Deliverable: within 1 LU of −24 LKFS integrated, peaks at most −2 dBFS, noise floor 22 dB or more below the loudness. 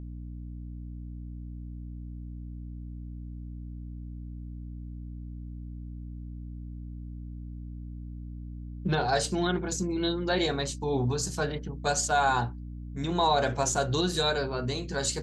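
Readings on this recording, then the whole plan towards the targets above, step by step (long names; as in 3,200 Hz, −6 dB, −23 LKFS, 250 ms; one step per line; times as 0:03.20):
mains hum 60 Hz; hum harmonics up to 300 Hz; level of the hum −37 dBFS; integrated loudness −28.0 LKFS; sample peak −13.5 dBFS; target loudness −24.0 LKFS
→ hum removal 60 Hz, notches 5
level +4 dB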